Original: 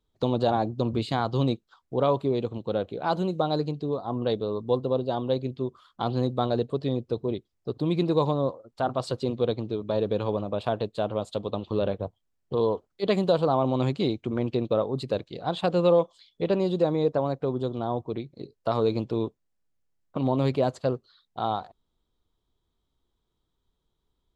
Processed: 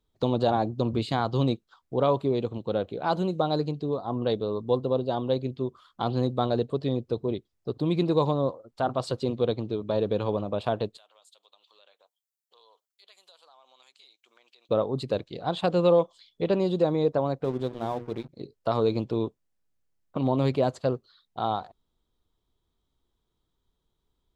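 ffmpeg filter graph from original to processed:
-filter_complex "[0:a]asettb=1/sr,asplit=3[a][b][c];[a]atrim=end=10.974[d];[b]atrim=start=10.97:end=14.69,asetpts=PTS-STARTPTS,afade=t=in:d=0.004:c=qsin,afade=t=out:st=3.716:d=0.004:c=qsin,highpass=670,aderivative,acompressor=threshold=-58dB:ratio=2.5:attack=3.2:release=140:knee=1:detection=peak[e];[c]atrim=start=14.686[f];[d][e]acrossfade=d=0.004:c1=hsin:c2=qsin[g];[g][f]acrossfade=d=0.004:c1=qsin:c2=hsin,asettb=1/sr,asplit=3[h][i][j];[h]atrim=end=17.444[k];[i]atrim=start=17.44:end=18.29,asetpts=PTS-STARTPTS,afade=t=in:d=0.004:c=qsin,afade=t=out:st=0.846:d=0.004:c=qsin,bandreject=f=60:t=h:w=6,bandreject=f=120:t=h:w=6,bandreject=f=180:t=h:w=6,bandreject=f=240:t=h:w=6,bandreject=f=300:t=h:w=6,bandreject=f=360:t=h:w=6,bandreject=f=420:t=h:w=6,bandreject=f=480:t=h:w=6,aeval=exprs='sgn(val(0))*max(abs(val(0))-0.00531,0)':c=same[l];[j]atrim=start=18.286[m];[k][l]acrossfade=d=0.004:c1=hsin:c2=qsin[n];[n][m]acrossfade=d=0.004:c1=qsin:c2=hsin"

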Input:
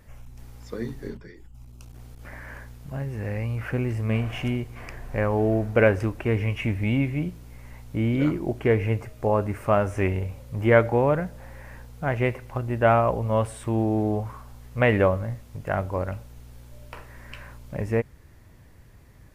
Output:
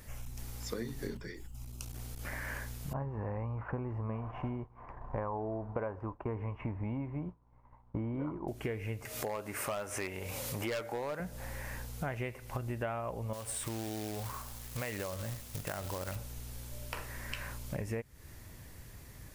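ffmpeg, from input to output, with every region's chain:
-filter_complex "[0:a]asettb=1/sr,asplit=3[a][b][c];[a]atrim=end=2.934[d];[b]atrim=start=2.93:end=8.48,asetpts=PTS-STARTPTS,afade=t=in:d=0.004:c=qsin,afade=t=out:st=5.546:d=0.004:c=qsin,agate=range=-33dB:threshold=-30dB:ratio=3:release=100:detection=peak,lowpass=f=990:t=q:w=4.9[e];[c]atrim=start=8.476[f];[d][e]acrossfade=d=0.004:c1=hsin:c2=qsin[g];[g][f]acrossfade=d=0.004:c1=qsin:c2=hsin,asettb=1/sr,asplit=3[h][i][j];[h]atrim=end=9.054[k];[i]atrim=start=9.05:end=11.2,asetpts=PTS-STARTPTS,afade=t=in:d=0.004:c=qsin,afade=t=out:st=2.146:d=0.004:c=qsin,highpass=f=470:p=1,acompressor=mode=upward:threshold=-28dB:ratio=2.5:attack=3.2:release=140:knee=2.83:detection=peak,asoftclip=type=hard:threshold=-18.5dB[l];[j]atrim=start=11.196[m];[k][l]acrossfade=d=0.004:c1=hsin:c2=qsin[n];[n][m]acrossfade=d=0.004:c1=qsin:c2=hsin,asettb=1/sr,asplit=3[o][p][q];[o]atrim=end=13.334[r];[p]atrim=start=13.33:end=16.16,asetpts=PTS-STARTPTS,afade=t=in:d=0.004:c=qsin,afade=t=out:st=2.826:d=0.004:c=qsin,lowshelf=f=430:g=-4,acompressor=threshold=-33dB:ratio=3:attack=3.2:release=140:knee=1:detection=peak,acrusher=bits=3:mode=log:mix=0:aa=0.000001[s];[q]atrim=start=16.156[t];[r][s]acrossfade=d=0.004:c1=hsin:c2=qsin[u];[u][t]acrossfade=d=0.004:c1=qsin:c2=hsin,highshelf=f=3.4k:g=11,acompressor=threshold=-34dB:ratio=10"

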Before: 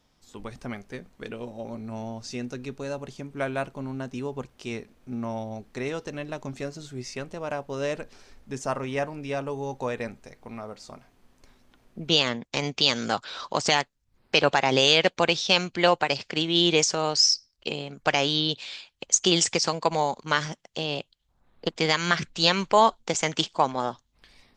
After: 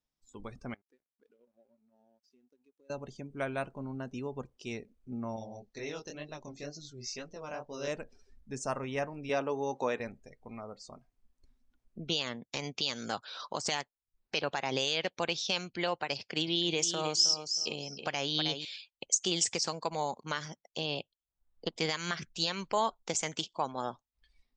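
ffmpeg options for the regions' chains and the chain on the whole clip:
-filter_complex "[0:a]asettb=1/sr,asplit=3[a][b][c];[a]atrim=end=0.744[d];[b]atrim=start=0.74:end=2.9,asetpts=PTS-STARTPTS,afade=t=in:d=0.004:c=qsin,afade=t=out:st=2.156:d=0.004:c=qsin,acompressor=threshold=-49dB:ratio=6:attack=3.2:release=140:knee=1:detection=peak,highpass=250,lowpass=5.7k,aeval=exprs='sgn(val(0))*max(abs(val(0))-0.00112,0)':c=same[e];[c]atrim=start=2.896[f];[d][e]acrossfade=d=0.004:c1=hsin:c2=qsin[g];[g][f]acrossfade=d=0.004:c1=qsin:c2=hsin,asettb=1/sr,asplit=3[h][i][j];[h]atrim=end=5.364[k];[i]atrim=start=5.36:end=7.88,asetpts=PTS-STARTPTS,afade=t=in:d=0.004:c=qsin,afade=t=out:st=2.516:d=0.004:c=qsin,lowpass=f=6k:w=0.5412,lowpass=f=6k:w=1.3066,bass=f=250:g=-2,treble=f=4k:g=10,flanger=delay=18:depth=7.7:speed=2.1[l];[j]atrim=start=7.876[m];[k][l]acrossfade=d=0.004:c1=hsin:c2=qsin[n];[n][m]acrossfade=d=0.004:c1=qsin:c2=hsin,asettb=1/sr,asplit=3[o][p][q];[o]atrim=end=9.294[r];[p]atrim=start=9.29:end=10,asetpts=PTS-STARTPTS,afade=t=in:d=0.004:c=qsin,afade=t=out:st=0.706:d=0.004:c=qsin,highpass=220,lowpass=7.8k,acontrast=26[s];[q]atrim=start=9.996[t];[r][s]acrossfade=d=0.004:c1=hsin:c2=qsin[u];[u][t]acrossfade=d=0.004:c1=qsin:c2=hsin,asettb=1/sr,asplit=3[v][w][x];[v]atrim=end=16.154[y];[w]atrim=start=16.15:end=18.65,asetpts=PTS-STARTPTS,afade=t=in:d=0.004:c=qsin,afade=t=out:st=2.496:d=0.004:c=qsin,highpass=57,aecho=1:1:316|632|948:0.316|0.0696|0.0153,atrim=end_sample=110250[z];[x]atrim=start=18.646[aa];[y][z]acrossfade=d=0.004:c1=hsin:c2=qsin[ab];[ab][aa]acrossfade=d=0.004:c1=qsin:c2=hsin,alimiter=limit=-13dB:level=0:latency=1:release=395,equalizer=f=8.4k:t=o:w=1.7:g=5.5,afftdn=nr=20:nf=-46,volume=-6dB"

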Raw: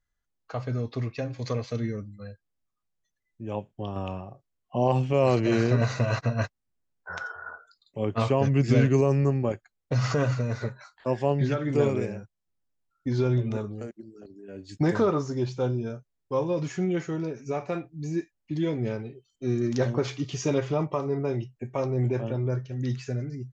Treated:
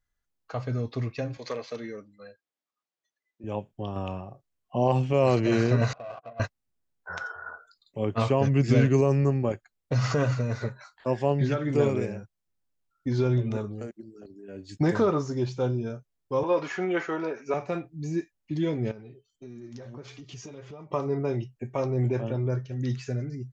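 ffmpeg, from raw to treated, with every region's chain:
-filter_complex "[0:a]asettb=1/sr,asplit=3[a][b][c];[a]atrim=end=1.374[d];[b]atrim=start=1.37:end=3.44,asetpts=PTS-STARTPTS,afade=t=in:d=0.004:c=qsin,afade=t=out:st=2.066:d=0.004:c=qsin,aeval=exprs='0.106*(abs(mod(val(0)/0.106+3,4)-2)-1)':c=same,highpass=360,lowpass=6.1k[e];[c]atrim=start=3.436[f];[d][e]acrossfade=d=0.004:c1=hsin:c2=qsin[g];[g][f]acrossfade=d=0.004:c1=qsin:c2=hsin,asettb=1/sr,asplit=3[h][i][j];[h]atrim=end=5.934[k];[i]atrim=start=5.93:end=6.4,asetpts=PTS-STARTPTS,afade=t=in:d=0.004:c=qsin,afade=t=out:st=0.466:d=0.004:c=qsin,asplit=3[l][m][n];[l]bandpass=f=730:t=q:w=8,volume=0dB[o];[m]bandpass=f=1.09k:t=q:w=8,volume=-6dB[p];[n]bandpass=f=2.44k:t=q:w=8,volume=-9dB[q];[o][p][q]amix=inputs=3:normalize=0,adynamicsmooth=sensitivity=7:basefreq=850[r];[j]atrim=start=6.396[s];[k][r]acrossfade=d=0.004:c1=hsin:c2=qsin[t];[t][s]acrossfade=d=0.004:c1=qsin:c2=hsin,asettb=1/sr,asplit=3[u][v][w];[u]atrim=end=16.434[x];[v]atrim=start=16.43:end=17.54,asetpts=PTS-STARTPTS,afade=t=in:d=0.004:c=qsin,afade=t=out:st=1.106:d=0.004:c=qsin,highpass=320,lowpass=5.2k,equalizer=f=1.2k:w=0.59:g=11[y];[w]atrim=start=17.536[z];[x][y]acrossfade=d=0.004:c1=hsin:c2=qsin[aa];[aa][z]acrossfade=d=0.004:c1=qsin:c2=hsin,asettb=1/sr,asplit=3[ab][ac][ad];[ab]atrim=end=18.914[ae];[ac]atrim=start=18.91:end=20.91,asetpts=PTS-STARTPTS,afade=t=in:d=0.004:c=qsin,afade=t=out:st=1.996:d=0.004:c=qsin,acompressor=threshold=-36dB:ratio=5:attack=3.2:release=140:knee=1:detection=peak,flanger=delay=4.1:depth=5.4:regen=61:speed=1.6:shape=sinusoidal[af];[ad]atrim=start=20.906[ag];[ae][af]acrossfade=d=0.004:c1=hsin:c2=qsin[ah];[ah][ag]acrossfade=d=0.004:c1=qsin:c2=hsin"

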